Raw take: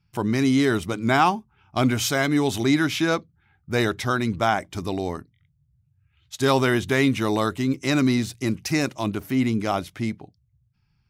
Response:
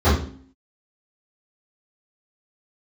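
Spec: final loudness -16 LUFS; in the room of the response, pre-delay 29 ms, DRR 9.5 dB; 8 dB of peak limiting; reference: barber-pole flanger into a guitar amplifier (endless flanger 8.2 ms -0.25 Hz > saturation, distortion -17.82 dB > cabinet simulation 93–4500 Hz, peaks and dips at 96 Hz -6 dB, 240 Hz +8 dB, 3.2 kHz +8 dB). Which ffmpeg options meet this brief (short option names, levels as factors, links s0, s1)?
-filter_complex "[0:a]alimiter=limit=0.178:level=0:latency=1,asplit=2[s0][s1];[1:a]atrim=start_sample=2205,adelay=29[s2];[s1][s2]afir=irnorm=-1:irlink=0,volume=0.0266[s3];[s0][s3]amix=inputs=2:normalize=0,asplit=2[s4][s5];[s5]adelay=8.2,afreqshift=-0.25[s6];[s4][s6]amix=inputs=2:normalize=1,asoftclip=threshold=0.126,highpass=93,equalizer=f=96:t=q:w=4:g=-6,equalizer=f=240:t=q:w=4:g=8,equalizer=f=3200:t=q:w=4:g=8,lowpass=f=4500:w=0.5412,lowpass=f=4500:w=1.3066,volume=2.82"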